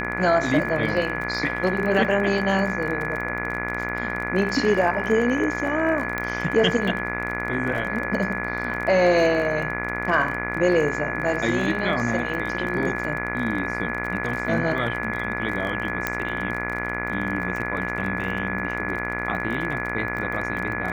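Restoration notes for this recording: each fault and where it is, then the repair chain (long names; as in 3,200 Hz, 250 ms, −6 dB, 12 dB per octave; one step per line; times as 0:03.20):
mains buzz 60 Hz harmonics 40 −30 dBFS
surface crackle 29 per second −30 dBFS
whistle 1,700 Hz −29 dBFS
0:06.18: click −13 dBFS
0:16.07: click −8 dBFS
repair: click removal
hum removal 60 Hz, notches 40
notch filter 1,700 Hz, Q 30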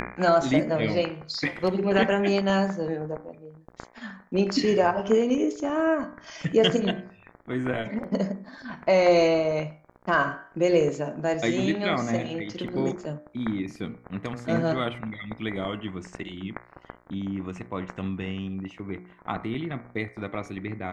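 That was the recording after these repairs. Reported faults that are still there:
0:16.07: click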